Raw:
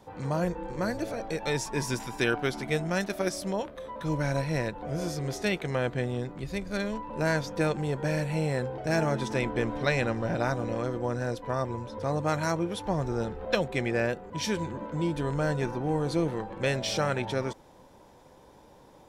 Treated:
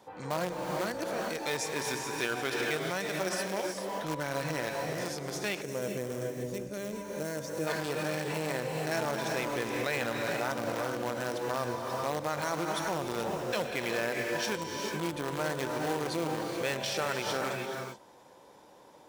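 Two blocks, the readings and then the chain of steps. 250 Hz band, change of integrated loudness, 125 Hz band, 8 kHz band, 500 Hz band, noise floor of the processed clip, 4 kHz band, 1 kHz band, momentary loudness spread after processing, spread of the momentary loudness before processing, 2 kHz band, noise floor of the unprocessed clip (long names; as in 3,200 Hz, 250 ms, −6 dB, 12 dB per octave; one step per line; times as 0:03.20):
−6.0 dB, −3.0 dB, −9.5 dB, +1.5 dB, −3.0 dB, −56 dBFS, +0.5 dB, −0.5 dB, 5 LU, 5 LU, −1.0 dB, −55 dBFS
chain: in parallel at −7.5 dB: bit reduction 4 bits
on the sum: reverb whose tail is shaped and stops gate 460 ms rising, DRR 5 dB
brickwall limiter −19.5 dBFS, peak gain reduction 11 dB
gain on a spectral selection 0:05.61–0:07.67, 630–5,300 Hz −10 dB
high-pass filter 400 Hz 6 dB per octave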